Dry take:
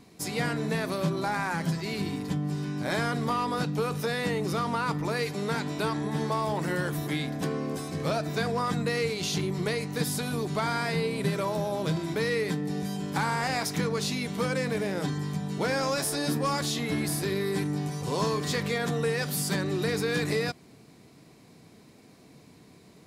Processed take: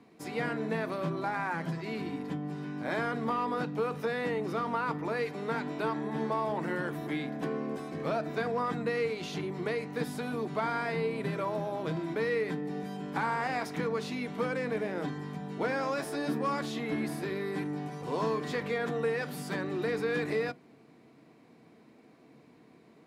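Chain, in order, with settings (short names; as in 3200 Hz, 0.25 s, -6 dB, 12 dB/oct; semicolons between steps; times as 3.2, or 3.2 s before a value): three-band isolator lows -14 dB, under 160 Hz, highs -14 dB, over 2900 Hz; on a send: reverb RT60 0.15 s, pre-delay 3 ms, DRR 15.5 dB; on the sum: gain -2.5 dB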